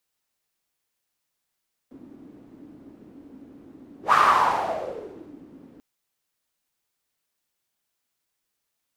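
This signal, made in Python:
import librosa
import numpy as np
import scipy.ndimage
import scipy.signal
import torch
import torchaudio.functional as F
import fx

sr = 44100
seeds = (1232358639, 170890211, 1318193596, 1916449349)

y = fx.whoosh(sr, seeds[0], length_s=3.89, peak_s=2.22, rise_s=0.12, fall_s=1.4, ends_hz=280.0, peak_hz=1200.0, q=5.7, swell_db=29.5)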